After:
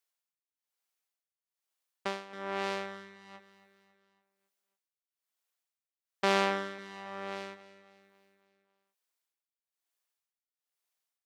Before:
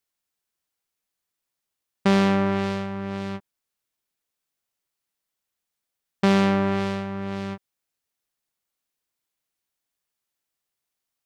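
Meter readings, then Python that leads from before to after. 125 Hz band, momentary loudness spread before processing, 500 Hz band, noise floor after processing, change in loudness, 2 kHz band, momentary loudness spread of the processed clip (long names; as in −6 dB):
below −20 dB, 14 LU, −9.5 dB, below −85 dBFS, −10.5 dB, −5.5 dB, 22 LU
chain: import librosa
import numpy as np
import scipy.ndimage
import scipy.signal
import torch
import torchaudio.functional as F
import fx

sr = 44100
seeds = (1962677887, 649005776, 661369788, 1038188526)

y = scipy.signal.sosfilt(scipy.signal.butter(2, 470.0, 'highpass', fs=sr, output='sos'), x)
y = y * (1.0 - 0.93 / 2.0 + 0.93 / 2.0 * np.cos(2.0 * np.pi * 1.1 * (np.arange(len(y)) / sr)))
y = fx.echo_feedback(y, sr, ms=275, feedback_pct=51, wet_db=-16.0)
y = y * 10.0 ** (-2.0 / 20.0)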